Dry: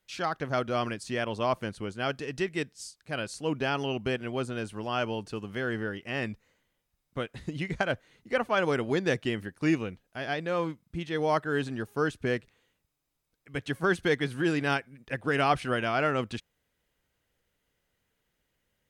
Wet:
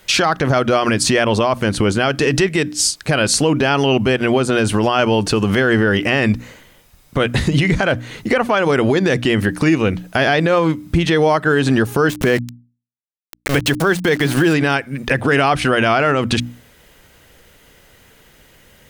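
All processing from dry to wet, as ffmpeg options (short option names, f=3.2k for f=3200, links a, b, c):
-filter_complex "[0:a]asettb=1/sr,asplit=3[a][b][c];[a]atrim=end=12.094[d];[b]atrim=start=12.09:end=14.54,asetpts=PTS-STARTPTS,afade=t=in:d=0.004:c=qsin,afade=t=out:st=2.446:d=0.004:c=qsin,acompressor=mode=upward:threshold=-36dB:ratio=2.5:attack=3.2:release=140:knee=2.83:detection=peak,aeval=exprs='val(0)*gte(abs(val(0)),0.00891)':c=same[e];[c]atrim=start=14.536[f];[d][e]acrossfade=d=0.004:c1=hsin:c2=qsin[g];[g][f]acrossfade=d=0.004:c1=qsin:c2=hsin,bandreject=f=60:t=h:w=6,bandreject=f=120:t=h:w=6,bandreject=f=180:t=h:w=6,bandreject=f=240:t=h:w=6,bandreject=f=300:t=h:w=6,acompressor=threshold=-36dB:ratio=6,alimiter=level_in=33.5dB:limit=-1dB:release=50:level=0:latency=1,volume=-4.5dB"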